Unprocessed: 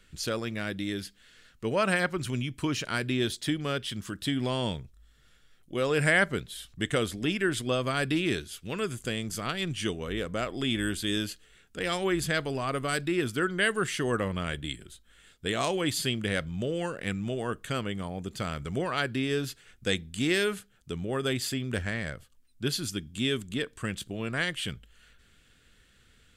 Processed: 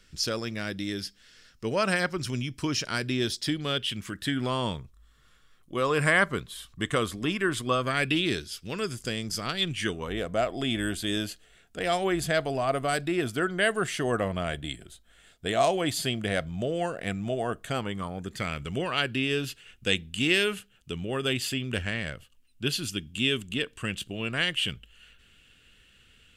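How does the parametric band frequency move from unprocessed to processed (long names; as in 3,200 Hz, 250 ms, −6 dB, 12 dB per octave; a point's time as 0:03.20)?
parametric band +12 dB 0.33 octaves
0:03.41 5,300 Hz
0:04.57 1,100 Hz
0:07.73 1,100 Hz
0:08.37 5,100 Hz
0:09.51 5,100 Hz
0:10.15 680 Hz
0:17.68 680 Hz
0:18.63 2,800 Hz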